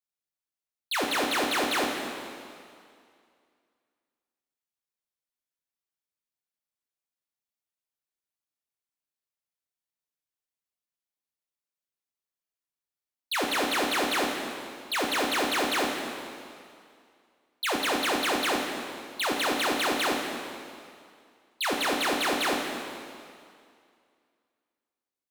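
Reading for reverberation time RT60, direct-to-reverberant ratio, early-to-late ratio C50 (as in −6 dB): 2.3 s, 0.0 dB, 2.5 dB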